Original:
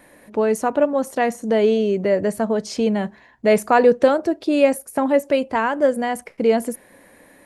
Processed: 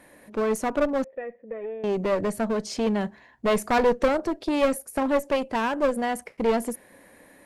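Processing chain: one-sided clip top -22.5 dBFS; 1.04–1.84 s: cascade formant filter e; trim -3 dB

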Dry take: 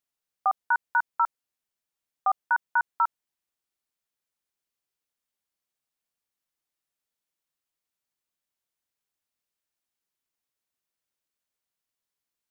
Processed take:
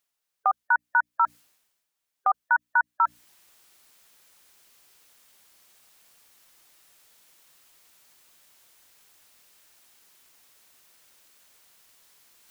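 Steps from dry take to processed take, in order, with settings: hum notches 60/120/180/240/300 Hz; spectral gate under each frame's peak -30 dB strong; dynamic bell 780 Hz, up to -4 dB, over -36 dBFS, Q 0.87; reverse; upward compressor, threshold -45 dBFS; reverse; bass shelf 480 Hz -5 dB; trim +5.5 dB

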